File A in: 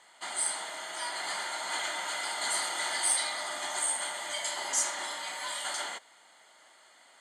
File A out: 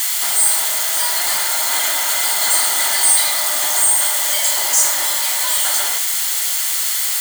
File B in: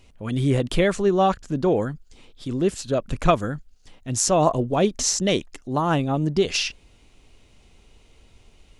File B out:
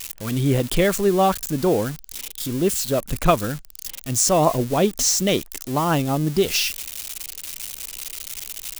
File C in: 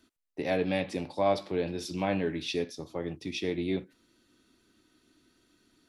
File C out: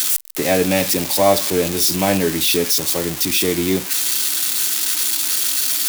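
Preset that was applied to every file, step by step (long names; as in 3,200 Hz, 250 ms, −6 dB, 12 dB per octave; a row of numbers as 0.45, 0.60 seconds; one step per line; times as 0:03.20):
spike at every zero crossing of −21 dBFS
normalise the peak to −3 dBFS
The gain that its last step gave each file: +10.0, +1.0, +11.5 decibels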